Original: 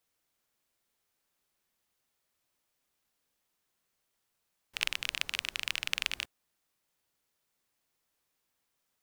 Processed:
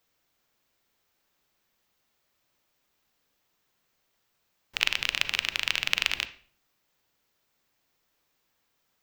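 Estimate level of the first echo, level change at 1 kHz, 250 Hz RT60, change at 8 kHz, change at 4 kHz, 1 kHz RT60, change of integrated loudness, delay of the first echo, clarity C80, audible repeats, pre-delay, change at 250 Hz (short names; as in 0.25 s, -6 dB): none, +7.0 dB, 0.65 s, +3.5 dB, +6.5 dB, 0.45 s, +6.5 dB, none, 18.0 dB, none, 33 ms, +7.5 dB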